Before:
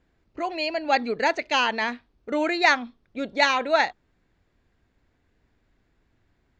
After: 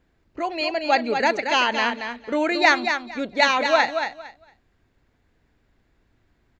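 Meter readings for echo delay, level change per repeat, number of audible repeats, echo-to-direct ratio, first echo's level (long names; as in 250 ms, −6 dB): 228 ms, −14.5 dB, 2, −7.0 dB, −7.0 dB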